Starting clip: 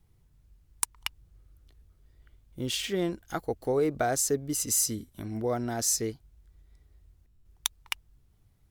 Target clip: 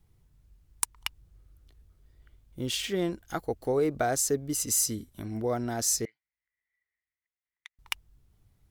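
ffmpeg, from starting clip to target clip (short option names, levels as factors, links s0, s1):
-filter_complex "[0:a]asettb=1/sr,asplit=3[s0][s1][s2];[s0]atrim=end=6.054[s3];[s1]atrim=start=6.05:end=7.79,asetpts=PTS-STARTPTS,afade=t=in:d=0.004:c=qsin,afade=t=out:st=1.736:d=0.004:c=qsin,bandpass=f=2000:t=q:w=11:csg=0[s4];[s2]atrim=start=7.786[s5];[s3][s4]acrossfade=d=0.004:c1=hsin:c2=qsin[s6];[s6][s5]acrossfade=d=0.004:c1=qsin:c2=hsin"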